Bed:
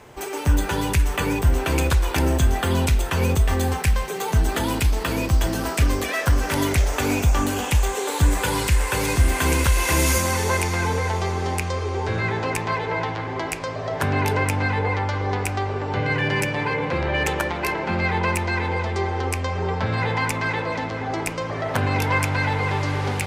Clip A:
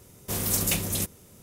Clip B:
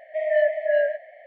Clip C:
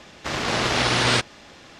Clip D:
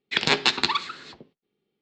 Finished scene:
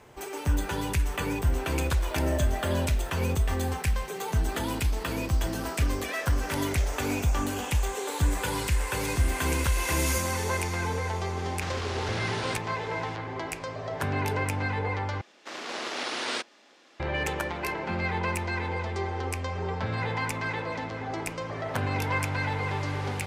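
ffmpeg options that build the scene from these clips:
ffmpeg -i bed.wav -i cue0.wav -i cue1.wav -i cue2.wav -filter_complex "[3:a]asplit=2[link_01][link_02];[0:a]volume=-7dB[link_03];[2:a]aeval=exprs='val(0)+0.5*0.0299*sgn(val(0))':channel_layout=same[link_04];[link_01]acompressor=threshold=-32dB:ratio=6:attack=3.2:release=140:knee=1:detection=peak[link_05];[link_02]highpass=frequency=250:width=0.5412,highpass=frequency=250:width=1.3066[link_06];[link_03]asplit=2[link_07][link_08];[link_07]atrim=end=15.214[link_09];[link_06]atrim=end=1.79,asetpts=PTS-STARTPTS,volume=-11dB[link_10];[link_08]atrim=start=16.996[link_11];[link_04]atrim=end=1.26,asetpts=PTS-STARTPTS,volume=-16dB,afade=type=in:duration=0.004:curve=hsin,afade=type=out:start_time=1.256:duration=0.004:curve=hsin,adelay=1960[link_12];[link_05]atrim=end=1.79,asetpts=PTS-STARTPTS,volume=-0.5dB,afade=type=in:duration=0.004:curve=hsin,afade=type=out:start_time=1.786:duration=0.004:curve=hsin,adelay=11370[link_13];[link_09][link_10]acrossfade=duration=0.004:curve1=hsin:curve2=hsin[link_14];[link_14][link_11]acrossfade=duration=0.004:curve1=hsin:curve2=hsin[link_15];[link_15][link_12][link_13]amix=inputs=3:normalize=0" out.wav

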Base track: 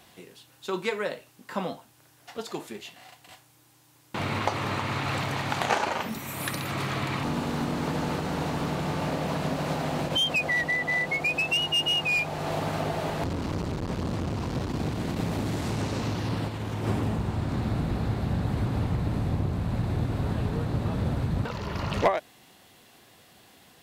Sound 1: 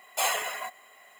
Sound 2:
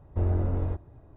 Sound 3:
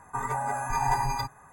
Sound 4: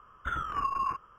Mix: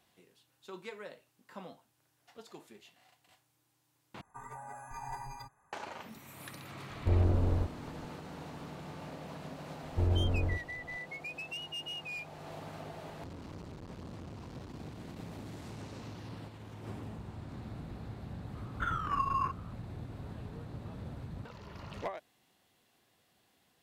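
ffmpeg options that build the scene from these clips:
ffmpeg -i bed.wav -i cue0.wav -i cue1.wav -i cue2.wav -i cue3.wav -filter_complex "[2:a]asplit=2[link_01][link_02];[0:a]volume=-16dB,asplit=2[link_03][link_04];[link_03]atrim=end=4.214[link_05];[3:a]atrim=end=1.52,asetpts=PTS-STARTPTS,volume=-16.5dB[link_06];[link_04]atrim=start=5.726[link_07];[link_01]atrim=end=1.16,asetpts=PTS-STARTPTS,volume=-1.5dB,afade=type=in:duration=0.004:curve=hsin,afade=type=out:start_time=1.156:duration=0.004:curve=hsin,adelay=304290S[link_08];[link_02]atrim=end=1.16,asetpts=PTS-STARTPTS,volume=-3.5dB,afade=type=in:duration=0.004:curve=hsin,afade=type=out:start_time=1.156:duration=0.004:curve=hsin,adelay=9810[link_09];[4:a]atrim=end=1.18,asetpts=PTS-STARTPTS,volume=-1.5dB,afade=type=in:duration=0.004:curve=hsin,afade=type=out:start_time=1.176:duration=0.004:curve=hsin,adelay=18550[link_10];[link_05][link_06]acrossfade=duration=0.004:curve1=hsin:curve2=hsin[link_11];[link_11][link_07]acrossfade=duration=0.004:curve1=hsin:curve2=hsin[link_12];[link_12][link_08][link_09][link_10]amix=inputs=4:normalize=0" out.wav

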